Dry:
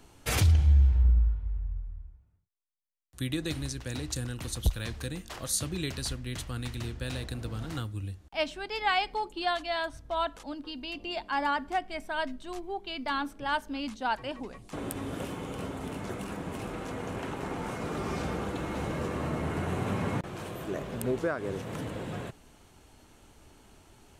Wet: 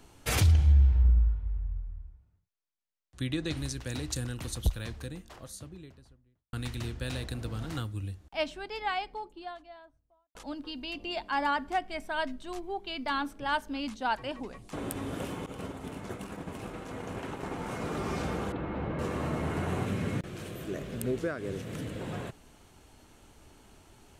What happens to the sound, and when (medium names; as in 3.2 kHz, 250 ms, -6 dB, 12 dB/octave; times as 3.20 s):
0.72–3.57 s: Bessel low-pass 5.9 kHz
4.16–6.53 s: studio fade out
7.98–10.35 s: studio fade out
15.46–17.71 s: expander -34 dBFS
18.52–18.99 s: distance through air 420 m
19.85–22.01 s: peaking EQ 900 Hz -10.5 dB 1 oct